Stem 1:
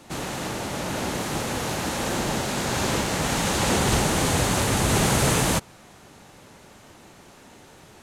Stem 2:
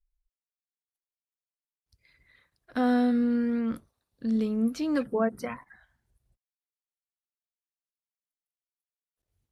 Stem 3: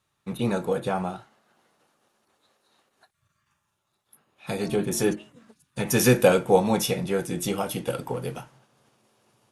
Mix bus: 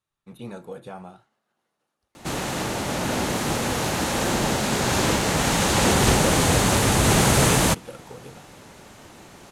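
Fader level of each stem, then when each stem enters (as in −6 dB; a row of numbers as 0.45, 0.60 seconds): +3.0, −15.0, −11.5 decibels; 2.15, 0.10, 0.00 seconds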